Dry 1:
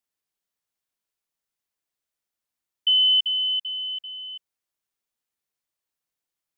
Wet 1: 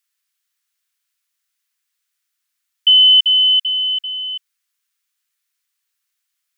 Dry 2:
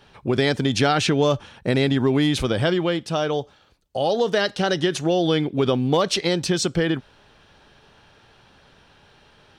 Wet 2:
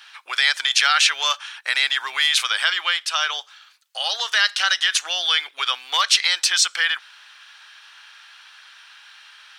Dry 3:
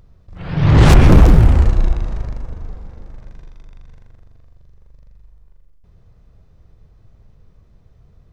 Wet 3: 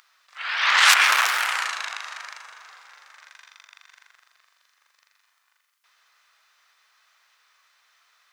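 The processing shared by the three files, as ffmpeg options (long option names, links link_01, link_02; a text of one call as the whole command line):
ffmpeg -i in.wav -filter_complex "[0:a]highpass=frequency=1300:width=0.5412,highpass=frequency=1300:width=1.3066,asplit=2[link_01][link_02];[link_02]alimiter=limit=-19.5dB:level=0:latency=1:release=111,volume=2.5dB[link_03];[link_01][link_03]amix=inputs=2:normalize=0,volume=4dB" out.wav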